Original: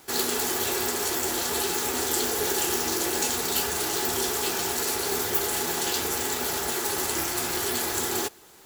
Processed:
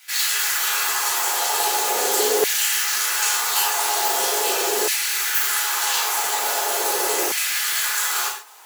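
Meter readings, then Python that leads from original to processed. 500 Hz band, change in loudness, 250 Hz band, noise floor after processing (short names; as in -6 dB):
+3.0 dB, +6.0 dB, -6.5 dB, -28 dBFS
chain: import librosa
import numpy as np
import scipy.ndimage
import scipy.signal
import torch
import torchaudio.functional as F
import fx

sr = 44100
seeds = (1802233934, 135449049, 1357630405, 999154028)

y = fx.highpass(x, sr, hz=270.0, slope=6)
y = fx.rev_gated(y, sr, seeds[0], gate_ms=180, shape='falling', drr_db=-4.5)
y = fx.filter_lfo_highpass(y, sr, shape='saw_down', hz=0.41, low_hz=410.0, high_hz=2200.0, q=1.9)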